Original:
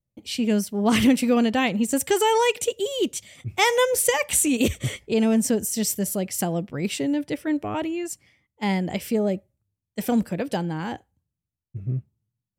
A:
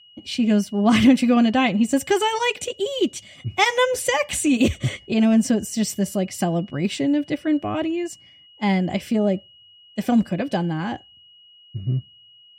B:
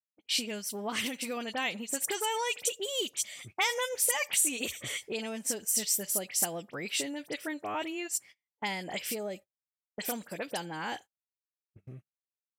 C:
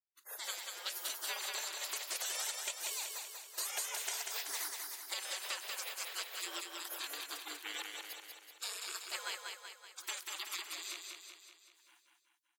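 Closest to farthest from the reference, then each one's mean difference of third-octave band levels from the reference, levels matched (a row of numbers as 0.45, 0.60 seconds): A, B, C; 2.5, 7.0, 19.0 decibels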